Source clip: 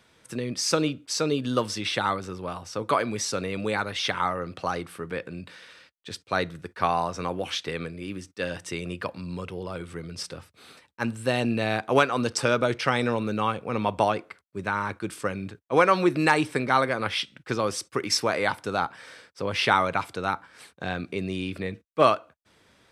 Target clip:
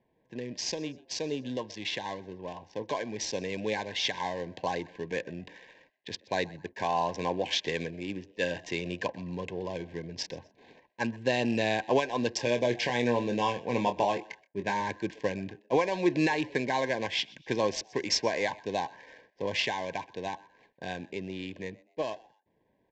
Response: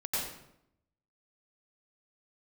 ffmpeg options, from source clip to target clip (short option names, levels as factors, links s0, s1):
-filter_complex "[0:a]lowshelf=f=130:g=-11,alimiter=limit=0.178:level=0:latency=1:release=305,dynaudnorm=f=370:g=21:m=2,acrusher=bits=9:mix=0:aa=0.000001,adynamicsmooth=sensitivity=7.5:basefreq=850,asettb=1/sr,asplit=3[s0][s1][s2];[s0]atrim=end=12.374[s3];[s1]atrim=start=12.37:end=14.81,asetpts=PTS-STARTPTS,afade=t=in:d=0.004:c=qsin,afade=t=out:st=2.436:d=0.004:c=qsin,asplit=2[s4][s5];[s5]adelay=25,volume=0.398[s6];[s4][s6]amix=inputs=2:normalize=0,atrim=end_sample=107604[s7];[s2]atrim=start=14.806[s8];[s3][s7]acrossfade=d=0.004:c1=hsin:c2=qsin[s9];[s9][s8]acrossfade=d=0.004:c1=qsin:c2=hsin,asplit=3[s10][s11][s12];[s11]adelay=125,afreqshift=110,volume=0.0708[s13];[s12]adelay=250,afreqshift=220,volume=0.0219[s14];[s10][s13][s14]amix=inputs=3:normalize=0,aresample=16000,aresample=44100,asuperstop=centerf=1300:order=20:qfactor=2.8,volume=0.562"